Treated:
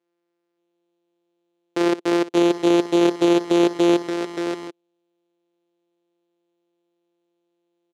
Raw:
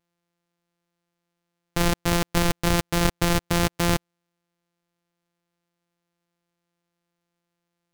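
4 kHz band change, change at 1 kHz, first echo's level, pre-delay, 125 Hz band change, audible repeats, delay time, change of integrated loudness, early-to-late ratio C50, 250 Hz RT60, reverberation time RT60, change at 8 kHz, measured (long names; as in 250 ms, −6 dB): −1.0 dB, +1.0 dB, −16.5 dB, no reverb audible, −9.0 dB, 4, 58 ms, +4.5 dB, no reverb audible, no reverb audible, no reverb audible, −7.0 dB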